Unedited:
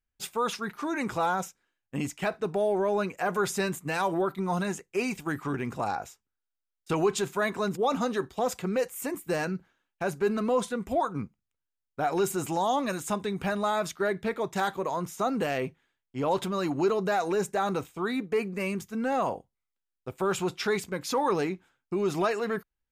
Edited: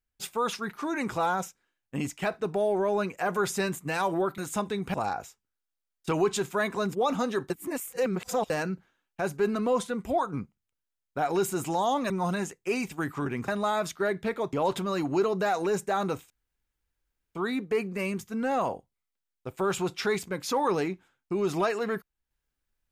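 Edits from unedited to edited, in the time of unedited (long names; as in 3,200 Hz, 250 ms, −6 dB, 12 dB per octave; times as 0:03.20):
0:04.38–0:05.76: swap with 0:12.92–0:13.48
0:08.32–0:09.32: reverse
0:14.53–0:16.19: remove
0:17.96: splice in room tone 1.05 s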